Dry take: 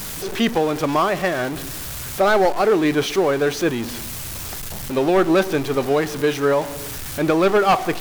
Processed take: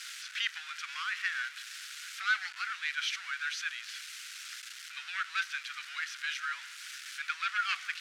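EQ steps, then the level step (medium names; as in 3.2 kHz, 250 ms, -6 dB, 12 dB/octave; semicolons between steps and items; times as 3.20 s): Chebyshev high-pass 1.4 kHz, order 5; low-pass 5.6 kHz 12 dB/octave; -5.5 dB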